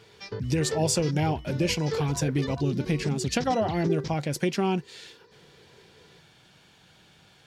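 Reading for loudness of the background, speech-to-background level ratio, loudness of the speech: -35.0 LUFS, 7.5 dB, -27.5 LUFS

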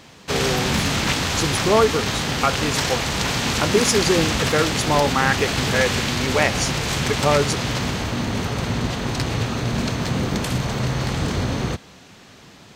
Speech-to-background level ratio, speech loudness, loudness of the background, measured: 0.0 dB, -22.5 LUFS, -22.5 LUFS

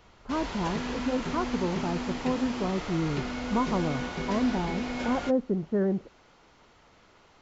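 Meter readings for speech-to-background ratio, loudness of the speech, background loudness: 3.5 dB, -31.0 LUFS, -34.5 LUFS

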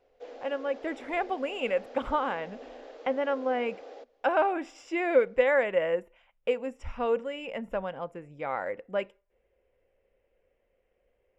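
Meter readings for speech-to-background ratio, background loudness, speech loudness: 16.5 dB, -46.5 LUFS, -30.0 LUFS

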